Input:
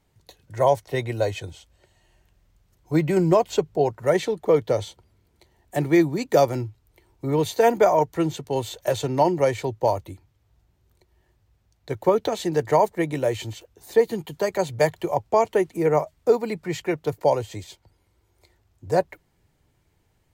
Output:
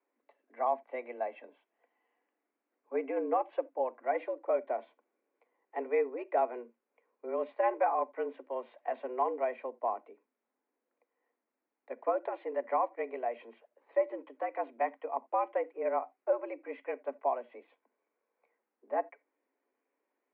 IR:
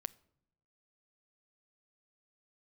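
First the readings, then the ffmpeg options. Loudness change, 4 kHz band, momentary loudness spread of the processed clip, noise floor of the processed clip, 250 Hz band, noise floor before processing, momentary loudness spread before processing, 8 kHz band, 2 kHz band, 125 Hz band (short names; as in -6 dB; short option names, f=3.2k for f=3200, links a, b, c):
-11.5 dB, under -25 dB, 9 LU, under -85 dBFS, -20.0 dB, -67 dBFS, 11 LU, under -40 dB, -12.0 dB, under -40 dB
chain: -filter_complex "[1:a]atrim=start_sample=2205,atrim=end_sample=3969[a];[0:a][a]afir=irnorm=-1:irlink=0,highpass=f=190:t=q:w=0.5412,highpass=f=190:t=q:w=1.307,lowpass=f=2.3k:t=q:w=0.5176,lowpass=f=2.3k:t=q:w=0.7071,lowpass=f=2.3k:t=q:w=1.932,afreqshift=120,volume=-9dB"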